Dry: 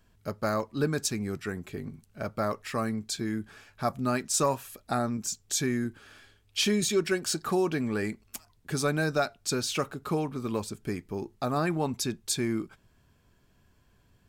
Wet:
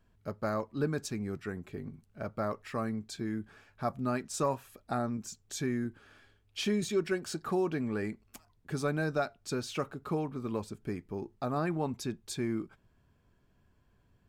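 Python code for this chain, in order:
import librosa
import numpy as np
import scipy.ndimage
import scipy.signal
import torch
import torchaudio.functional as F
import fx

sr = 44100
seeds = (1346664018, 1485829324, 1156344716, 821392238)

y = fx.high_shelf(x, sr, hz=2900.0, db=-9.5)
y = y * 10.0 ** (-3.5 / 20.0)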